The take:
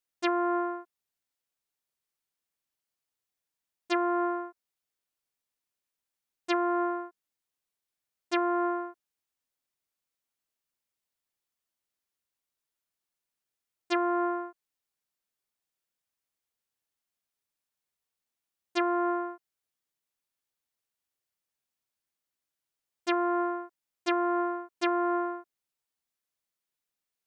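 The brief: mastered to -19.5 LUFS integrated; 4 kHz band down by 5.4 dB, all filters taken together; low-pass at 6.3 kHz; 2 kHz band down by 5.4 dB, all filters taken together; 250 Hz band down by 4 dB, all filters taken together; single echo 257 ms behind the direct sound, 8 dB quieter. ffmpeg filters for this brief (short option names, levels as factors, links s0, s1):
-af "lowpass=6300,equalizer=f=250:t=o:g=-7.5,equalizer=f=2000:t=o:g=-6.5,equalizer=f=4000:t=o:g=-4,aecho=1:1:257:0.398,volume=4.73"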